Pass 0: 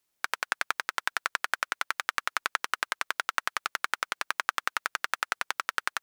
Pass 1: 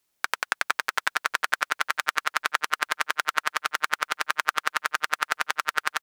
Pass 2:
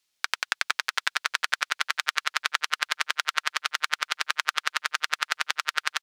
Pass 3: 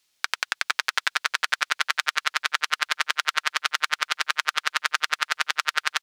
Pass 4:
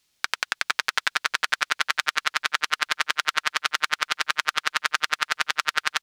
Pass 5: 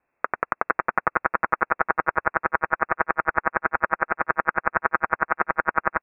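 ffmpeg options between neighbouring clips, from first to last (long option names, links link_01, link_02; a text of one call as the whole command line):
ffmpeg -i in.wav -filter_complex "[0:a]asplit=2[link_01][link_02];[link_02]adelay=455,lowpass=frequency=4700:poles=1,volume=-6.5dB,asplit=2[link_03][link_04];[link_04]adelay=455,lowpass=frequency=4700:poles=1,volume=0.47,asplit=2[link_05][link_06];[link_06]adelay=455,lowpass=frequency=4700:poles=1,volume=0.47,asplit=2[link_07][link_08];[link_08]adelay=455,lowpass=frequency=4700:poles=1,volume=0.47,asplit=2[link_09][link_10];[link_10]adelay=455,lowpass=frequency=4700:poles=1,volume=0.47,asplit=2[link_11][link_12];[link_12]adelay=455,lowpass=frequency=4700:poles=1,volume=0.47[link_13];[link_01][link_03][link_05][link_07][link_09][link_11][link_13]amix=inputs=7:normalize=0,volume=3.5dB" out.wav
ffmpeg -i in.wav -af "equalizer=frequency=4000:width=0.46:gain=13,volume=-8.5dB" out.wav
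ffmpeg -i in.wav -af "alimiter=level_in=7dB:limit=-1dB:release=50:level=0:latency=1,volume=-1dB" out.wav
ffmpeg -i in.wav -af "lowshelf=frequency=270:gain=11" out.wav
ffmpeg -i in.wav -af "highpass=frequency=300:poles=1,lowpass=frequency=2400:width_type=q:width=0.5098,lowpass=frequency=2400:width_type=q:width=0.6013,lowpass=frequency=2400:width_type=q:width=0.9,lowpass=frequency=2400:width_type=q:width=2.563,afreqshift=-2800,volume=3.5dB" out.wav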